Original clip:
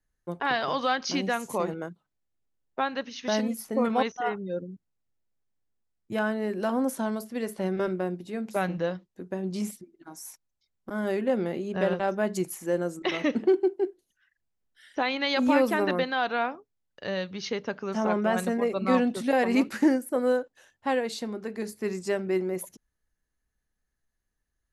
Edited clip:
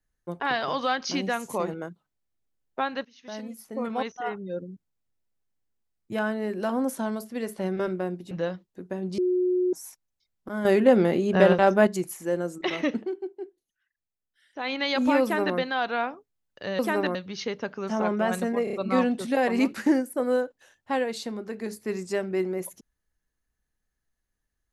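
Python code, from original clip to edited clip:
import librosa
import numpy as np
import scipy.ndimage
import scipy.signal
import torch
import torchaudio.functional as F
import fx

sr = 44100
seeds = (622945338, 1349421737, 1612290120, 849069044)

y = fx.edit(x, sr, fx.fade_in_from(start_s=3.05, length_s=1.67, floor_db=-18.5),
    fx.cut(start_s=8.31, length_s=0.41),
    fx.bleep(start_s=9.59, length_s=0.55, hz=363.0, db=-20.5),
    fx.clip_gain(start_s=11.06, length_s=1.22, db=8.0),
    fx.fade_down_up(start_s=13.34, length_s=1.78, db=-10.0, fade_s=0.13),
    fx.duplicate(start_s=15.63, length_s=0.36, to_s=17.2),
    fx.stutter(start_s=18.69, slice_s=0.03, count=4), tone=tone)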